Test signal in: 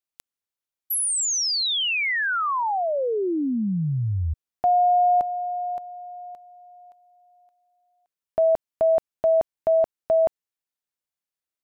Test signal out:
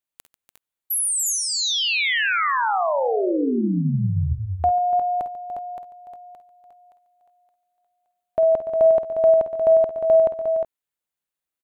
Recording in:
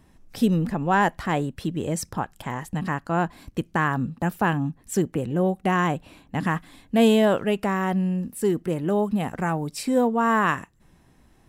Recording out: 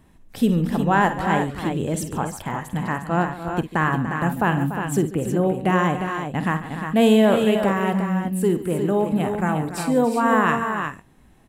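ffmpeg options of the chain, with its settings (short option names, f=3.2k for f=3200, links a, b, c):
-filter_complex "[0:a]equalizer=f=5.3k:t=o:w=0.46:g=-6.5,asplit=2[a][b];[b]aecho=0:1:51|64|142|291|356|376:0.266|0.119|0.15|0.266|0.447|0.126[c];[a][c]amix=inputs=2:normalize=0,volume=1.5dB"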